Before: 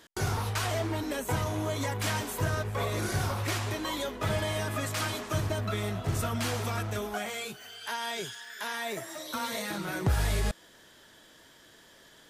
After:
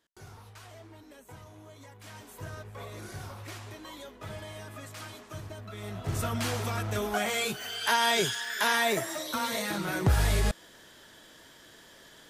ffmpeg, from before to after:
ffmpeg -i in.wav -af "volume=9.5dB,afade=type=in:start_time=2.02:duration=0.45:silence=0.421697,afade=type=in:start_time=5.73:duration=0.53:silence=0.266073,afade=type=in:start_time=6.82:duration=0.96:silence=0.334965,afade=type=out:start_time=8.72:duration=0.62:silence=0.446684" out.wav

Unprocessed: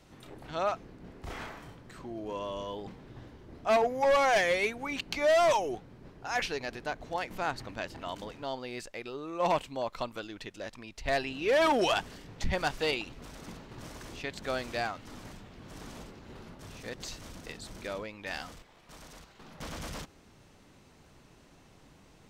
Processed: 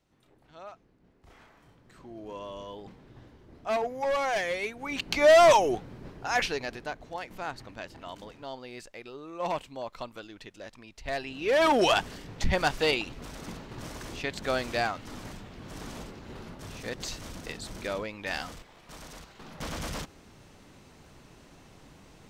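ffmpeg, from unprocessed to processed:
ffmpeg -i in.wav -af "volume=15dB,afade=type=in:start_time=1.49:duration=0.74:silence=0.266073,afade=type=in:start_time=4.75:duration=0.51:silence=0.298538,afade=type=out:start_time=5.97:duration=1.09:silence=0.298538,afade=type=in:start_time=11.21:duration=0.68:silence=0.398107" out.wav

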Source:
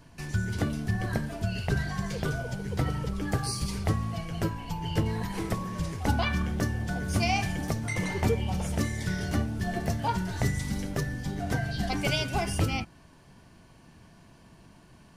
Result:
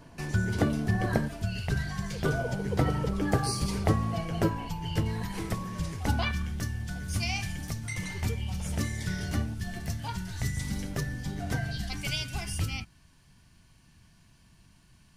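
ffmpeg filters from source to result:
ffmpeg -i in.wav -af "asetnsamples=nb_out_samples=441:pad=0,asendcmd='1.28 equalizer g -5.5;2.24 equalizer g 5.5;4.68 equalizer g -4;6.31 equalizer g -13.5;8.66 equalizer g -5.5;9.54 equalizer g -13.5;10.57 equalizer g -4.5;11.78 equalizer g -15',equalizer=frequency=510:width_type=o:width=2.8:gain=5.5" out.wav

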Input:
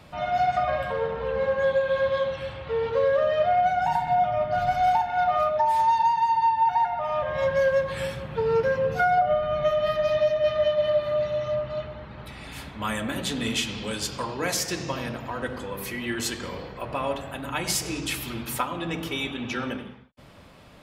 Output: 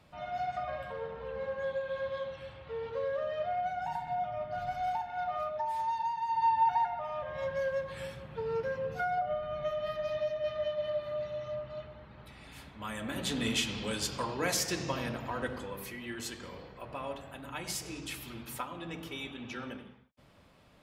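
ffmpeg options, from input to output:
ffmpeg -i in.wav -af "volume=3dB,afade=type=in:start_time=6.25:duration=0.29:silence=0.398107,afade=type=out:start_time=6.54:duration=0.59:silence=0.446684,afade=type=in:start_time=12.93:duration=0.42:silence=0.446684,afade=type=out:start_time=15.38:duration=0.6:silence=0.446684" out.wav

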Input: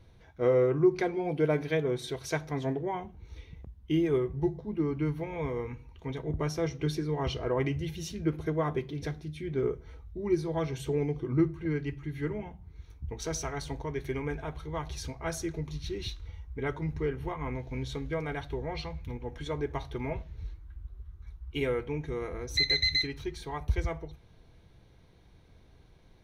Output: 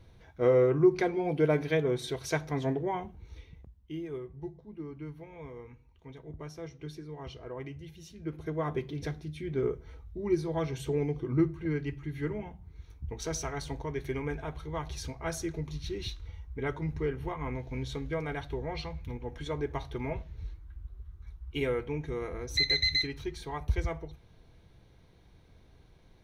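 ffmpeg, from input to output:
ffmpeg -i in.wav -af "volume=12dB,afade=type=out:start_time=3.05:duration=0.86:silence=0.237137,afade=type=in:start_time=8.14:duration=0.71:silence=0.281838" out.wav

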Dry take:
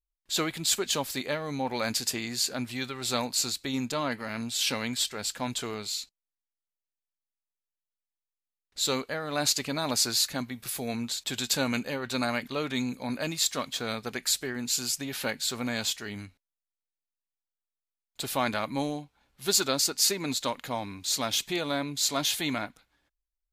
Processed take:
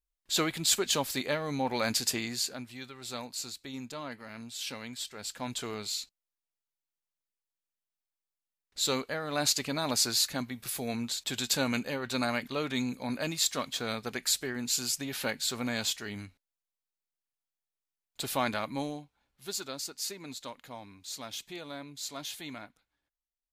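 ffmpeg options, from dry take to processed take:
ffmpeg -i in.wav -af "volume=8.5dB,afade=type=out:start_time=2.19:duration=0.45:silence=0.316228,afade=type=in:start_time=5.03:duration=0.81:silence=0.375837,afade=type=out:start_time=18.34:duration=1.19:silence=0.298538" out.wav

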